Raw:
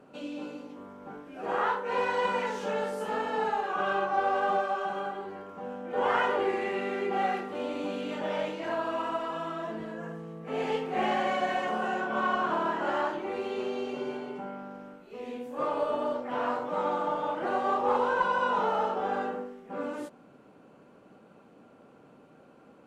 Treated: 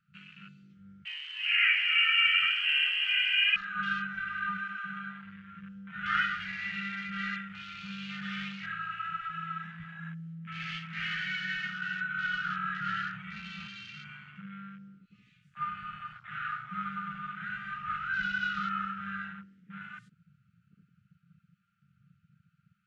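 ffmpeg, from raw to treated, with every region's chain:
ffmpeg -i in.wav -filter_complex "[0:a]asettb=1/sr,asplit=3[link_01][link_02][link_03];[link_01]atrim=end=1.054[link_04];[link_02]atrim=start=1.05:end=3.56,asetpts=PTS-STARTPTS,afade=type=in:duration=0.004:curve=qsin,afade=type=out:start_time=2.506:duration=0.004:curve=qsin,acrusher=bits=7:mix=0:aa=0.5,asplit=8[link_05][link_06][link_07][link_08][link_09][link_10][link_11][link_12];[link_06]adelay=145,afreqshift=-89,volume=-9dB[link_13];[link_07]adelay=290,afreqshift=-178,volume=-14dB[link_14];[link_08]adelay=435,afreqshift=-267,volume=-19.1dB[link_15];[link_09]adelay=580,afreqshift=-356,volume=-24.1dB[link_16];[link_10]adelay=725,afreqshift=-445,volume=-29.1dB[link_17];[link_11]adelay=870,afreqshift=-534,volume=-34.2dB[link_18];[link_12]adelay=1015,afreqshift=-623,volume=-39.2dB[link_19];[link_05][link_13][link_14][link_15][link_16][link_17][link_18][link_19]amix=inputs=8:normalize=0,atrim=end_sample=110691,lowpass=frequency=2800:width_type=q:width=0.5098,lowpass=frequency=2800:width_type=q:width=0.6013,lowpass=frequency=2800:width_type=q:width=0.9,lowpass=frequency=2800:width_type=q:width=2.563,afreqshift=-3300[link_20];[link_03]atrim=start=3.556[link_21];[link_04][link_20]acrossfade=duration=0.004:curve1=hsin:curve2=qsin[link_22];[link_22][link_21]acrossfade=duration=0.004:curve1=qsin:curve2=hsin,asettb=1/sr,asplit=3[link_23][link_24][link_25];[link_23]atrim=end=12.804[link_26];[link_24]atrim=start=12.8:end=13.67,asetpts=PTS-STARTPTS,afade=type=in:duration=0.004:curve=qsin,afade=type=out:start_time=0.866:duration=0.004:curve=qsin,highpass=frequency=100:width=0.5412,highpass=frequency=100:width=1.3066,equalizer=frequency=390:width=2.4:gain=7,afreqshift=-33[link_27];[link_25]atrim=start=13.666[link_28];[link_26][link_27]acrossfade=duration=0.004:curve1=hsin:curve2=qsin[link_29];[link_29][link_28]acrossfade=duration=0.004:curve1=qsin:curve2=hsin,afftfilt=real='re*(1-between(b*sr/4096,210,1200))':imag='im*(1-between(b*sr/4096,210,1200))':win_size=4096:overlap=0.75,afwtdn=0.00355,lowpass=6300,volume=3dB" out.wav

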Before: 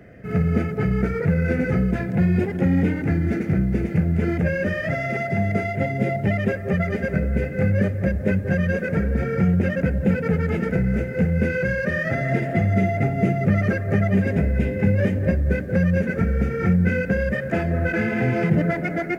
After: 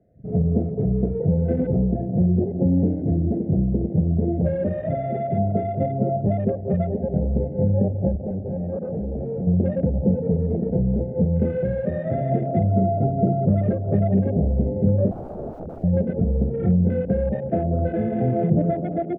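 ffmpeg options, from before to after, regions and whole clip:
ffmpeg -i in.wav -filter_complex "[0:a]asettb=1/sr,asplit=3[link_01][link_02][link_03];[link_01]atrim=end=8.164[link_04];[link_02]atrim=start=8.16:end=9.47,asetpts=PTS-STARTPTS,afade=type=in:duration=0.004:curve=qsin,afade=type=out:start_time=1.306:duration=0.004:curve=qsin,lowshelf=frequency=62:gain=-11.5,volume=24dB,asoftclip=hard,volume=-24dB,asuperstop=centerf=3900:order=8:qfactor=1.5[link_05];[link_03]atrim=start=9.466[link_06];[link_04][link_05]acrossfade=duration=0.004:curve1=hsin:curve2=qsin[link_07];[link_07][link_06]acrossfade=duration=0.004:curve1=qsin:curve2=hsin,asettb=1/sr,asplit=3[link_08][link_09][link_10];[link_08]atrim=end=15.114[link_11];[link_09]atrim=start=15.11:end=15.84,asetpts=PTS-STARTPTS,afade=type=in:duration=0.004:curve=qsin,afade=type=out:start_time=0.726:duration=0.004:curve=qsin,acompressor=threshold=-19dB:ratio=20:attack=3.2:release=140:knee=1:detection=peak,aeval=exprs='(mod(17.8*val(0)+1,2)-1)/17.8':channel_layout=same[link_12];[link_10]atrim=start=15.836[link_13];[link_11][link_12]acrossfade=duration=0.004:curve1=hsin:curve2=qsin[link_14];[link_14][link_13]acrossfade=duration=0.004:curve1=qsin:curve2=hsin,afwtdn=0.0398,firequalizer=gain_entry='entry(440,0);entry(680,3);entry(1000,-17);entry(3100,-24)':delay=0.05:min_phase=1" out.wav

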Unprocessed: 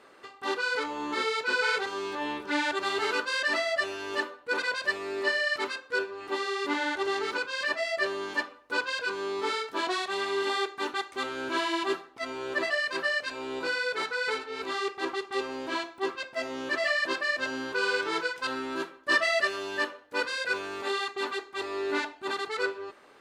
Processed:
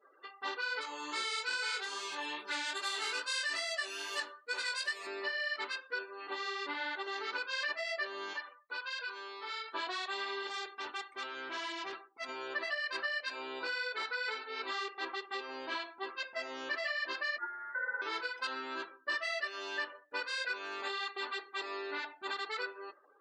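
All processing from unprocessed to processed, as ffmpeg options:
ffmpeg -i in.wav -filter_complex "[0:a]asettb=1/sr,asplit=3[link_01][link_02][link_03];[link_01]atrim=end=0.814[link_04];[link_02]atrim=start=0.81:end=5.07,asetpts=PTS-STARTPTS,afade=type=in:duration=0.004:curve=qsin,afade=type=out:start_time=4.256:duration=0.004:curve=qsin,aemphasis=mode=production:type=75fm,flanger=delay=18.5:depth=2.6:speed=2.4[link_05];[link_03]atrim=start=5.066[link_06];[link_04][link_05]acrossfade=duration=0.004:curve1=hsin:curve2=qsin[link_07];[link_07][link_06]acrossfade=duration=0.004:curve1=qsin:curve2=hsin,asettb=1/sr,asplit=3[link_08][link_09][link_10];[link_08]atrim=end=8.334[link_11];[link_09]atrim=start=8.33:end=9.74,asetpts=PTS-STARTPTS,afade=type=in:duration=0.004:curve=qsin,afade=type=out:start_time=1.406:duration=0.004:curve=qsin,acompressor=threshold=-34dB:ratio=4:attack=3.2:release=140:knee=1:detection=peak,highpass=frequency=710:poles=1[link_12];[link_10]atrim=start=9.736[link_13];[link_11][link_12]acrossfade=duration=0.004:curve1=hsin:curve2=qsin[link_14];[link_14][link_13]acrossfade=duration=0.004:curve1=qsin:curve2=hsin,asettb=1/sr,asplit=3[link_15][link_16][link_17];[link_15]atrim=end=10.474[link_18];[link_16]atrim=start=10.47:end=12.29,asetpts=PTS-STARTPTS,afade=type=in:duration=0.004:curve=qsin,afade=type=out:start_time=1.816:duration=0.004:curve=qsin,highpass=140,aeval=exprs='(tanh(39.8*val(0)+0.65)-tanh(0.65))/39.8':channel_layout=same[link_19];[link_17]atrim=start=12.286[link_20];[link_18][link_19]acrossfade=duration=0.004:curve1=hsin:curve2=qsin[link_21];[link_21][link_20]acrossfade=duration=0.004:curve1=qsin:curve2=hsin,asettb=1/sr,asplit=3[link_22][link_23][link_24];[link_22]atrim=end=17.384[link_25];[link_23]atrim=start=17.38:end=18.02,asetpts=PTS-STARTPTS,afade=type=in:duration=0.004:curve=qsin,afade=type=out:start_time=0.636:duration=0.004:curve=qsin,highpass=frequency=1400:width=0.5412,highpass=frequency=1400:width=1.3066,lowpass=frequency=2600:width_type=q:width=0.5098,lowpass=frequency=2600:width_type=q:width=0.6013,lowpass=frequency=2600:width_type=q:width=0.9,lowpass=frequency=2600:width_type=q:width=2.563,afreqshift=-3000[link_26];[link_24]atrim=start=18.016[link_27];[link_25][link_26]acrossfade=duration=0.004:curve1=hsin:curve2=qsin[link_28];[link_28][link_27]acrossfade=duration=0.004:curve1=qsin:curve2=hsin,acompressor=threshold=-31dB:ratio=8,afftdn=noise_reduction=34:noise_floor=-50,highpass=frequency=950:poles=1" out.wav

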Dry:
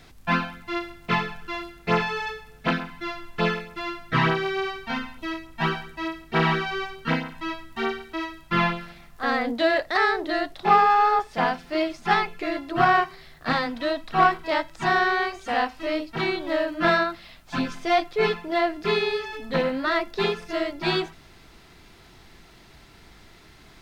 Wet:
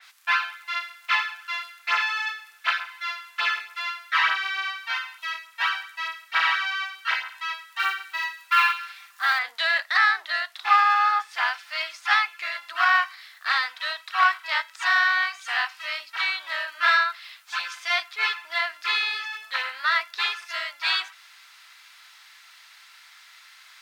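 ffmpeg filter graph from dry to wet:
ffmpeg -i in.wav -filter_complex "[0:a]asettb=1/sr,asplit=3[link_01][link_02][link_03];[link_01]atrim=end=7.794[link_04];[link_02]atrim=start=7.79:end=9.39,asetpts=PTS-STARTPTS,afade=type=in:duration=0.004:curve=qsin,afade=type=out:start_time=1.596:duration=0.004:curve=qsin,aecho=1:1:5.1:0.72,atrim=end_sample=70560,acrusher=bits=8:mode=log:mix=0:aa=0.000001[link_05];[link_03]atrim=start=9.386[link_06];[link_04][link_05]acrossfade=duration=0.004:curve1=hsin:curve2=qsin[link_07];[link_07][link_06]acrossfade=duration=0.004:curve1=qsin:curve2=hsin,highpass=frequency=1200:width=0.5412,highpass=frequency=1200:width=1.3066,acontrast=21,adynamicequalizer=threshold=0.02:dfrequency=4000:dqfactor=0.7:tfrequency=4000:tqfactor=0.7:attack=5:release=100:ratio=0.375:range=2:mode=cutabove:tftype=highshelf" out.wav

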